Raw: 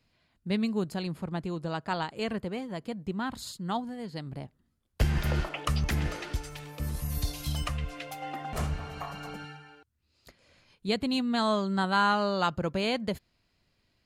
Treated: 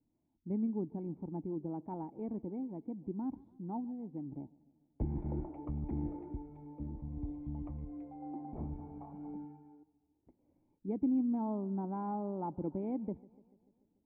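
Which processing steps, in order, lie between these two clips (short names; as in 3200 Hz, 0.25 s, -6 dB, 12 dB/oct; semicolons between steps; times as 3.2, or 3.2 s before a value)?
vocal tract filter u; warbling echo 0.146 s, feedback 61%, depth 76 cents, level -23 dB; gain +3.5 dB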